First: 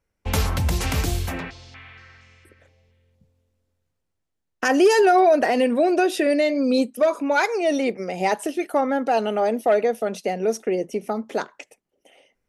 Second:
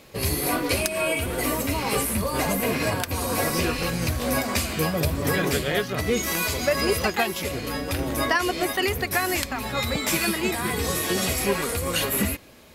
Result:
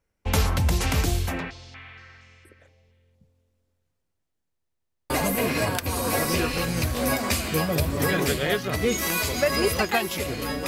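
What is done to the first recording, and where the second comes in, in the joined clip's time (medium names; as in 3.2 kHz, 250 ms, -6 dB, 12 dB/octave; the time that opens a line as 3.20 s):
first
4.50 s: stutter in place 0.10 s, 6 plays
5.10 s: go over to second from 2.35 s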